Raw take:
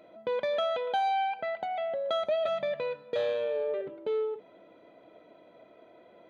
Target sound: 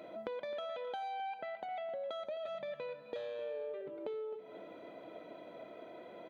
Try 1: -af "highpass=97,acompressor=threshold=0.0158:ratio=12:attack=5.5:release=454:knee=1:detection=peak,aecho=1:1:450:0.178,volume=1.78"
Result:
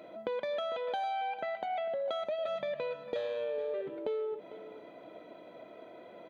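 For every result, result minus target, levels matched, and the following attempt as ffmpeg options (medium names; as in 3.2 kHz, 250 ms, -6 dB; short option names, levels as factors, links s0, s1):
echo 189 ms late; compression: peak gain reduction -6.5 dB
-af "highpass=97,acompressor=threshold=0.0158:ratio=12:attack=5.5:release=454:knee=1:detection=peak,aecho=1:1:261:0.178,volume=1.78"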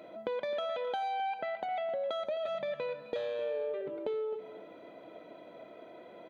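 compression: peak gain reduction -6.5 dB
-af "highpass=97,acompressor=threshold=0.00708:ratio=12:attack=5.5:release=454:knee=1:detection=peak,aecho=1:1:261:0.178,volume=1.78"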